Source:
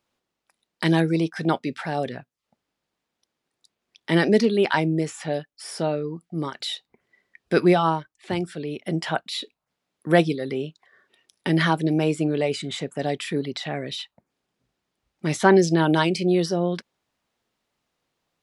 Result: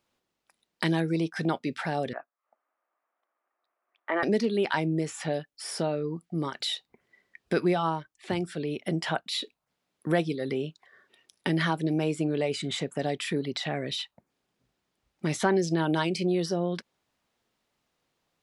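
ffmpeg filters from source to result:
ffmpeg -i in.wav -filter_complex "[0:a]asettb=1/sr,asplit=3[link_01][link_02][link_03];[link_01]atrim=end=2.134[link_04];[link_02]atrim=start=2.13:end=4.23,asetpts=PTS-STARTPTS,afade=type=in:duration=0.004:curve=qsin,afade=type=out:start_time=2.096:duration=0.004:curve=qsin,highpass=frequency=390:width=0.5412,highpass=frequency=390:width=1.3066,equalizer=frequency=430:width_type=q:width=4:gain=-9,equalizer=frequency=660:width_type=q:width=4:gain=5,equalizer=frequency=1200:width_type=q:width=4:gain=9,lowpass=frequency=2000:width=0.5412,lowpass=frequency=2000:width=1.3066[link_05];[link_03]atrim=start=4.226[link_06];[link_04][link_05]acrossfade=duration=0.004:curve1=hsin:curve2=qsin[link_07];[link_07][link_06]acrossfade=duration=0.004:curve1=qsin:curve2=hsin,acompressor=threshold=-27dB:ratio=2" out.wav

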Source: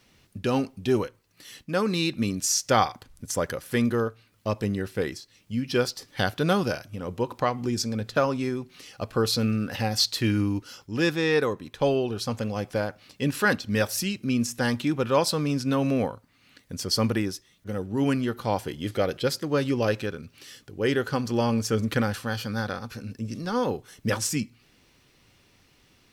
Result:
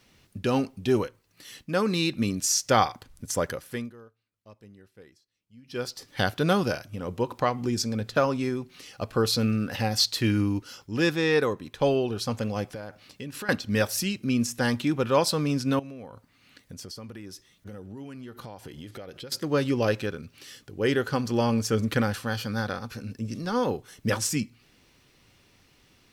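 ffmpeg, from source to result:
ffmpeg -i in.wav -filter_complex "[0:a]asettb=1/sr,asplit=3[link_01][link_02][link_03];[link_01]atrim=end=12.724[link_04];[link_02]atrim=start=12.72:end=13.49,asetpts=PTS-STARTPTS,afade=type=in:duration=0.004:curve=qsin,afade=type=out:start_time=0.766:duration=0.004:curve=qsin,acompressor=threshold=-34dB:ratio=6:attack=3.2:release=140:knee=1:detection=peak[link_05];[link_03]atrim=start=13.486[link_06];[link_04][link_05]acrossfade=duration=0.004:curve1=hsin:curve2=qsin[link_07];[link_07][link_06]acrossfade=duration=0.004:curve1=qsin:curve2=hsin,asettb=1/sr,asplit=3[link_08][link_09][link_10];[link_08]atrim=end=15.794[link_11];[link_09]atrim=start=15.79:end=19.32,asetpts=PTS-STARTPTS,afade=type=in:duration=0.004:curve=qsin,afade=type=out:start_time=3.526:duration=0.004:curve=qsin,acompressor=threshold=-37dB:ratio=12:attack=3.2:release=140:knee=1:detection=peak[link_12];[link_10]atrim=start=19.316[link_13];[link_11][link_12]acrossfade=duration=0.004:curve1=hsin:curve2=qsin[link_14];[link_14][link_13]acrossfade=duration=0.004:curve1=qsin:curve2=hsin,asplit=3[link_15][link_16][link_17];[link_15]atrim=end=3.93,asetpts=PTS-STARTPTS,afade=type=out:start_time=3.45:duration=0.48:silence=0.0668344[link_18];[link_16]atrim=start=3.93:end=5.63,asetpts=PTS-STARTPTS,volume=-23.5dB[link_19];[link_17]atrim=start=5.63,asetpts=PTS-STARTPTS,afade=type=in:duration=0.48:silence=0.0668344[link_20];[link_18][link_19][link_20]concat=n=3:v=0:a=1" out.wav

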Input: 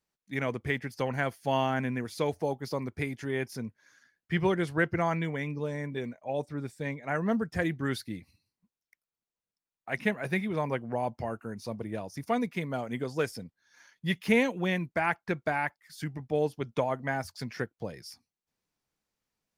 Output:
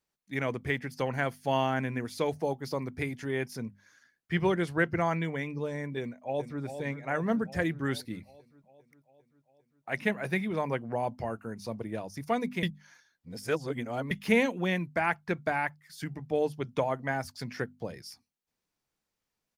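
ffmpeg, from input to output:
ffmpeg -i in.wav -filter_complex "[0:a]asplit=2[link_01][link_02];[link_02]afade=type=in:start_time=5.99:duration=0.01,afade=type=out:start_time=6.61:duration=0.01,aecho=0:1:400|800|1200|1600|2000|2400|2800|3200|3600:0.354813|0.230629|0.149909|0.0974406|0.0633364|0.0411687|0.0267596|0.0173938|0.0113059[link_03];[link_01][link_03]amix=inputs=2:normalize=0,asplit=3[link_04][link_05][link_06];[link_04]atrim=end=12.632[link_07];[link_05]atrim=start=12.628:end=14.112,asetpts=PTS-STARTPTS,areverse[link_08];[link_06]atrim=start=14.108[link_09];[link_07][link_08]acrossfade=duration=0.004:curve1=hsin:curve2=hsin[link_10];[link_10][link_09]acrossfade=duration=0.004:curve1=hsin:curve2=hsin,bandreject=frequency=50:width_type=h:width=6,bandreject=frequency=100:width_type=h:width=6,bandreject=frequency=150:width_type=h:width=6,bandreject=frequency=200:width_type=h:width=6,bandreject=frequency=250:width_type=h:width=6" out.wav

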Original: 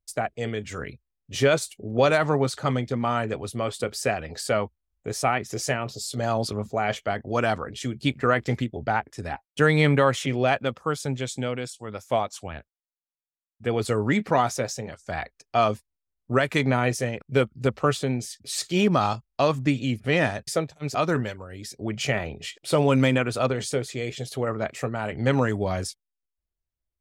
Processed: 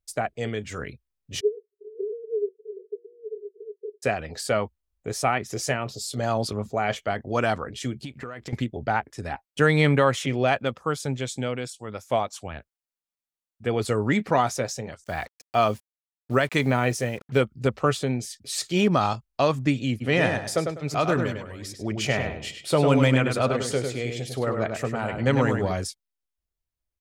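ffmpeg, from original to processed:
ffmpeg -i in.wav -filter_complex "[0:a]asplit=3[link_01][link_02][link_03];[link_01]afade=type=out:start_time=1.39:duration=0.02[link_04];[link_02]asuperpass=centerf=420:order=12:qfactor=4.9,afade=type=in:start_time=1.39:duration=0.02,afade=type=out:start_time=4.02:duration=0.02[link_05];[link_03]afade=type=in:start_time=4.02:duration=0.02[link_06];[link_04][link_05][link_06]amix=inputs=3:normalize=0,asettb=1/sr,asplit=3[link_07][link_08][link_09];[link_07]atrim=end=7.994[link_10];[link_08]atrim=start=7.99:end=8.53,asetpts=PTS-STARTPTS,afade=type=in:duration=0.004:curve=qsin,afade=type=out:start_time=0.536:duration=0.004:curve=qsin,acompressor=threshold=-31dB:ratio=20:attack=3.2:release=140:knee=1:detection=peak[link_11];[link_09]atrim=start=8.526[link_12];[link_10][link_11]acrossfade=duration=0.004:curve1=hsin:curve2=qsin[link_13];[link_13][link_12]acrossfade=duration=0.004:curve1=qsin:curve2=hsin,asettb=1/sr,asplit=3[link_14][link_15][link_16];[link_14]atrim=end=15.044[link_17];[link_15]atrim=start=15.04:end=17.38,asetpts=PTS-STARTPTS,afade=type=in:duration=0.004:curve=qsin,afade=type=out:start_time=2.336:duration=0.004:curve=qsin,acrusher=bits=7:mix=0:aa=0.5[link_18];[link_16]atrim=start=17.376[link_19];[link_17][link_18]acrossfade=duration=0.004:curve1=hsin:curve2=qsin[link_20];[link_20][link_19]acrossfade=duration=0.004:curve1=qsin:curve2=hsin,asplit=3[link_21][link_22][link_23];[link_21]afade=type=out:start_time=20:duration=0.02[link_24];[link_22]asplit=2[link_25][link_26];[link_26]adelay=100,lowpass=frequency=4100:poles=1,volume=-5dB,asplit=2[link_27][link_28];[link_28]adelay=100,lowpass=frequency=4100:poles=1,volume=0.26,asplit=2[link_29][link_30];[link_30]adelay=100,lowpass=frequency=4100:poles=1,volume=0.26[link_31];[link_25][link_27][link_29][link_31]amix=inputs=4:normalize=0,afade=type=in:start_time=20:duration=0.02,afade=type=out:start_time=25.71:duration=0.02[link_32];[link_23]afade=type=in:start_time=25.71:duration=0.02[link_33];[link_24][link_32][link_33]amix=inputs=3:normalize=0" out.wav

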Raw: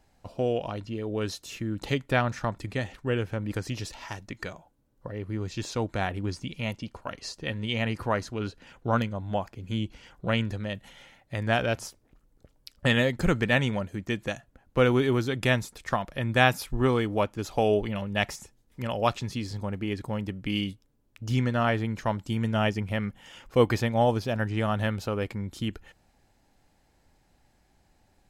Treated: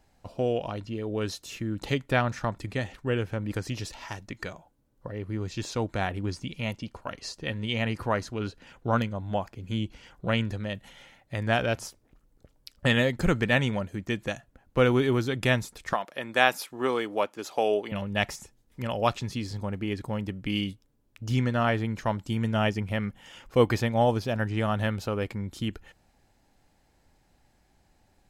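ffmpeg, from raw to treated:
ffmpeg -i in.wav -filter_complex "[0:a]asettb=1/sr,asplit=3[link_01][link_02][link_03];[link_01]atrim=end=15.934[link_04];[link_02]atrim=start=15.93:end=17.92,asetpts=PTS-STARTPTS,afade=type=in:duration=0.004:curve=qsin,afade=type=out:start_time=1.986:duration=0.004:curve=qsin,highpass=350[link_05];[link_03]atrim=start=17.916[link_06];[link_04][link_05]acrossfade=duration=0.004:curve1=hsin:curve2=qsin[link_07];[link_07][link_06]acrossfade=duration=0.004:curve1=qsin:curve2=hsin" out.wav

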